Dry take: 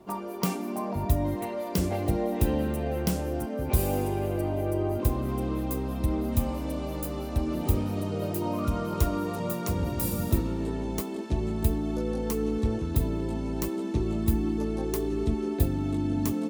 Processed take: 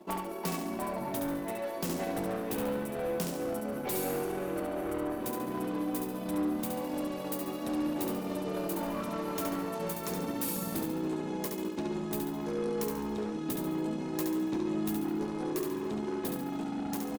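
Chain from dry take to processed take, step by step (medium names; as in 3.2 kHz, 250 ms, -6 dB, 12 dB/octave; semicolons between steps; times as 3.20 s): high-pass 200 Hz 24 dB/octave; transient shaper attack +7 dB, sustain -10 dB; saturation -29.5 dBFS, distortion -9 dB; on a send: feedback delay 67 ms, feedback 44%, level -4.5 dB; on the sum: speed mistake 25 fps video run at 24 fps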